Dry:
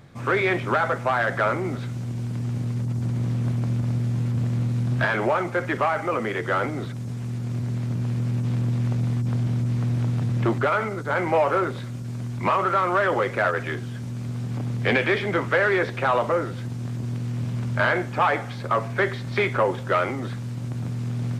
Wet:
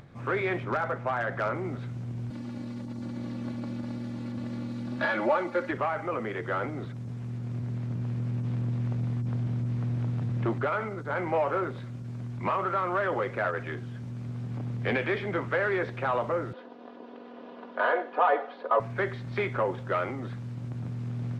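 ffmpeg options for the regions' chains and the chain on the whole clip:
-filter_complex "[0:a]asettb=1/sr,asplit=3[s0][s1][s2];[s0]atrim=end=0.644[s3];[s1]atrim=start=0.64:end=1.55,asetpts=PTS-STARTPTS,afade=t=in:d=0.004:c=qsin,afade=t=out:st=0.906:d=0.004:c=qsin,highshelf=f=6500:g=-11,aeval=exprs='0.211*(abs(mod(val(0)/0.211+3,4)-2)-1)':c=same[s4];[s2]atrim=start=1.546[s5];[s3][s4]acrossfade=d=0.004:c1=hsin:c2=qsin[s6];[s6][s5]acrossfade=d=0.004:c1=qsin:c2=hsin,asettb=1/sr,asplit=3[s7][s8][s9];[s7]atrim=end=2.304[s10];[s8]atrim=start=2.3:end=5.71,asetpts=PTS-STARTPTS,afade=t=in:d=0.004:c=qsin,afade=t=out:st=3.406:d=0.004:c=qsin,highpass=140,equalizer=f=4200:w=2.9:g=7,aecho=1:1:3.5:0.87,atrim=end_sample=150381[s11];[s9]atrim=start=5.706[s12];[s10][s11]acrossfade=d=0.004:c1=hsin:c2=qsin[s13];[s13][s12]acrossfade=d=0.004:c1=qsin:c2=hsin,asettb=1/sr,asplit=3[s14][s15][s16];[s14]atrim=end=16.534[s17];[s15]atrim=start=16.53:end=18.8,asetpts=PTS-STARTPTS,afade=t=in:d=0.004:c=qsin,afade=t=out:st=2.266:d=0.004:c=qsin,highpass=f=340:w=0.5412,highpass=f=340:w=1.3066,equalizer=f=380:t=q:w=4:g=8,equalizer=f=620:t=q:w=4:g=8,equalizer=f=970:t=q:w=4:g=5,equalizer=f=2200:t=q:w=4:g=-7,lowpass=f=3800:w=0.5412,lowpass=f=3800:w=1.3066,aecho=1:1:4.1:0.72,atrim=end_sample=100107,aecho=1:1:96:0.0944,atrim=end_sample=100107[s18];[s16]atrim=start=18.796[s19];[s17][s18]acrossfade=d=0.004:c1=hsin:c2=qsin[s20];[s20][s19]acrossfade=d=0.004:c1=qsin:c2=hsin,lowpass=f=2500:p=1,acompressor=mode=upward:threshold=0.0112:ratio=2.5,volume=0.501"

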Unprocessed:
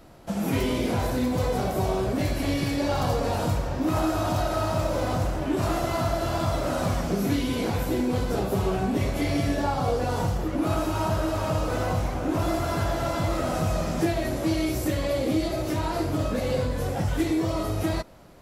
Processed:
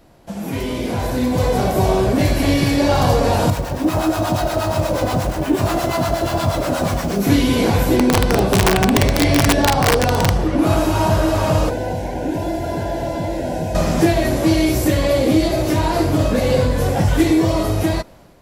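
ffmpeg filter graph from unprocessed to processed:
-filter_complex "[0:a]asettb=1/sr,asplit=3[s0][s1][s2];[s0]atrim=end=3.504[s3];[s1]atrim=start=3.5:end=7.27,asetpts=PTS-STARTPTS,afade=t=in:d=0.004:c=qsin,afade=t=out:st=3.766:d=0.004:c=qsin,highpass=f=68:p=1,acrusher=bits=8:dc=4:mix=0:aa=0.000001,acrossover=split=760[s4][s5];[s4]aeval=exprs='val(0)*(1-0.7/2+0.7/2*cos(2*PI*8.4*n/s))':c=same[s6];[s5]aeval=exprs='val(0)*(1-0.7/2-0.7/2*cos(2*PI*8.4*n/s))':c=same[s7];[s6][s7]amix=inputs=2:normalize=0[s8];[s2]atrim=start=7.266[s9];[s3][s8]acrossfade=d=0.004:c1=hsin:c2=qsin[s10];[s10][s9]acrossfade=d=0.004:c1=qsin:c2=hsin,asettb=1/sr,asplit=3[s11][s12][s13];[s11]atrim=end=7.964[s14];[s12]atrim=start=7.96:end=10.59,asetpts=PTS-STARTPTS,afade=t=in:d=0.004:c=qsin,afade=t=out:st=2.626:d=0.004:c=qsin,lowpass=9300,bandreject=f=7000:w=8.1,aeval=exprs='(mod(7.08*val(0)+1,2)-1)/7.08':c=same[s15];[s13]atrim=start=10.586[s16];[s14][s15]acrossfade=d=0.004:c1=hsin:c2=qsin[s17];[s17][s16]acrossfade=d=0.004:c1=qsin:c2=hsin,asettb=1/sr,asplit=3[s18][s19][s20];[s18]atrim=end=11.694[s21];[s19]atrim=start=11.69:end=13.75,asetpts=PTS-STARTPTS,afade=t=in:d=0.004:c=qsin,afade=t=out:st=2.056:d=0.004:c=qsin,acrossover=split=230|760|2300[s22][s23][s24][s25];[s22]acompressor=threshold=0.0112:ratio=3[s26];[s23]acompressor=threshold=0.0224:ratio=3[s27];[s24]acompressor=threshold=0.00501:ratio=3[s28];[s25]acompressor=threshold=0.00178:ratio=3[s29];[s26][s27][s28][s29]amix=inputs=4:normalize=0,asuperstop=centerf=1200:order=20:qfactor=3.4[s30];[s20]atrim=start=13.746[s31];[s21][s30]acrossfade=d=0.004:c1=hsin:c2=qsin[s32];[s32][s31]acrossfade=d=0.004:c1=qsin:c2=hsin,bandreject=f=1300:w=13,dynaudnorm=f=480:g=5:m=3.76"

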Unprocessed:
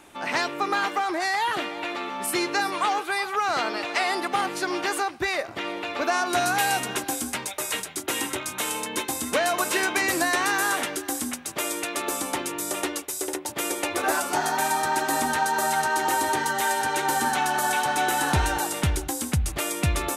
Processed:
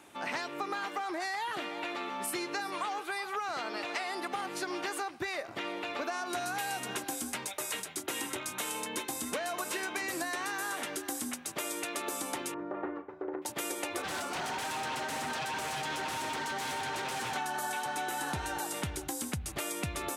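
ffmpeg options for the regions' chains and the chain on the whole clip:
-filter_complex "[0:a]asettb=1/sr,asplit=3[s0][s1][s2];[s0]atrim=end=12.544[s3];[s1]atrim=start=12.54:end=13.42,asetpts=PTS-STARTPTS,afade=t=in:d=0.004:c=qsin,afade=t=out:st=0.876:d=0.004:c=qsin,lowpass=f=1500:w=0.5412,lowpass=f=1500:w=1.3066,asplit=2[s4][s5];[s5]adelay=37,volume=0.282[s6];[s4][s6]amix=inputs=2:normalize=0,atrim=end_sample=38808[s7];[s2]atrim=start=13.416[s8];[s3][s7]acrossfade=d=0.004:c1=hsin:c2=qsin[s9];[s9][s8]acrossfade=d=0.004:c1=qsin:c2=hsin,asettb=1/sr,asplit=3[s10][s11][s12];[s10]atrim=end=14.024[s13];[s11]atrim=start=14.02:end=17.36,asetpts=PTS-STARTPTS,afade=t=in:d=0.004:c=qsin,afade=t=out:st=3.336:d=0.004:c=qsin,aeval=exprs='0.0631*(abs(mod(val(0)/0.0631+3,4)-2)-1)':c=same,adynamicsmooth=sensitivity=6:basefreq=6300[s14];[s12]atrim=start=17.356[s15];[s13][s14]acrossfade=d=0.004:c1=hsin:c2=qsin[s16];[s16][s15]acrossfade=d=0.004:c1=qsin:c2=hsin,highpass=88,acompressor=threshold=0.0447:ratio=6,volume=0.562"

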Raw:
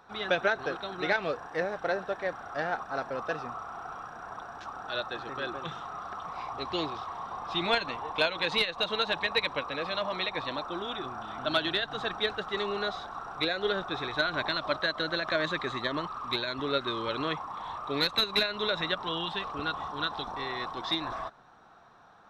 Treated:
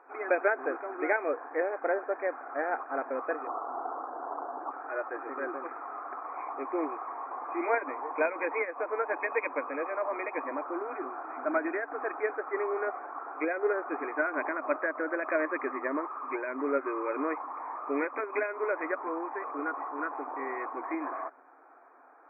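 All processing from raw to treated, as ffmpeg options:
-filter_complex "[0:a]asettb=1/sr,asplit=3[s0][s1][s2];[s0]atrim=end=3.474[s3];[s1]atrim=start=3.47:end=4.71,asetpts=PTS-STARTPTS,afade=t=in:d=0.004:c=qsin,afade=t=out:st=1.236:d=0.004:c=qsin,lowpass=f=1100:w=0.5412,lowpass=f=1100:w=1.3066,acontrast=70[s4];[s2]atrim=start=4.706[s5];[s3][s4]acrossfade=d=0.004:c1=hsin:c2=qsin[s6];[s6][s5]acrossfade=d=0.004:c1=qsin:c2=hsin,afftfilt=real='re*between(b*sr/4096,250,2500)':imag='im*between(b*sr/4096,250,2500)':win_size=4096:overlap=0.75,tiltshelf=f=970:g=3"

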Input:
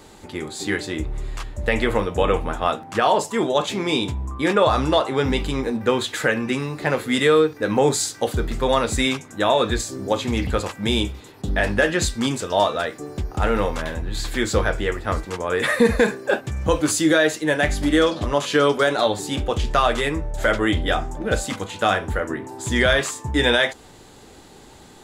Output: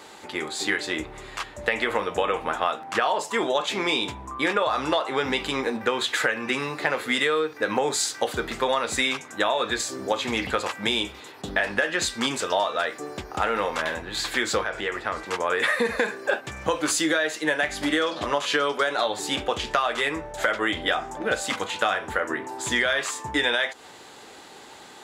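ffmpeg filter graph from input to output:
-filter_complex "[0:a]asettb=1/sr,asplit=3[s0][s1][s2];[s0]atrim=end=14.634[s3];[s1]atrim=start=14.63:end=15.26,asetpts=PTS-STARTPTS,afade=t=in:d=0.004:c=qsin,afade=t=out:st=0.626:d=0.004:c=qsin,acompressor=threshold=0.0708:ratio=6:attack=3.2:release=140:knee=1:detection=peak,highshelf=f=12000:g=-9[s4];[s2]atrim=start=15.256[s5];[s3][s4]acrossfade=d=0.004:c1=hsin:c2=qsin[s6];[s6][s5]acrossfade=d=0.004:c1=qsin:c2=hsin,highpass=f=1100:p=1,highshelf=f=4600:g=-10,acompressor=threshold=0.0398:ratio=6,volume=2.51"

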